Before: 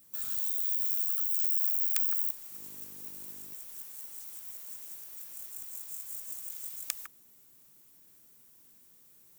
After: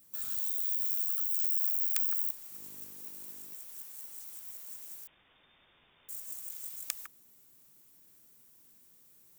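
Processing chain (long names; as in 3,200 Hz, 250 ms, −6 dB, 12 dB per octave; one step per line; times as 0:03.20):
0:02.92–0:03.95: low-shelf EQ 140 Hz −8 dB
0:05.07–0:06.09: voice inversion scrambler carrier 3,600 Hz
level −1.5 dB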